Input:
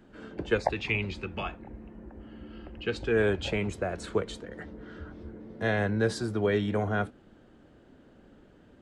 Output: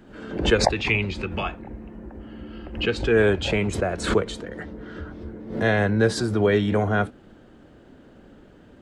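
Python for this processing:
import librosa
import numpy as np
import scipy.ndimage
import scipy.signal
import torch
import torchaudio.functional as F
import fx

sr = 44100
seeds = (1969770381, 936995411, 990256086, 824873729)

y = fx.pre_swell(x, sr, db_per_s=99.0)
y = F.gain(torch.from_numpy(y), 6.5).numpy()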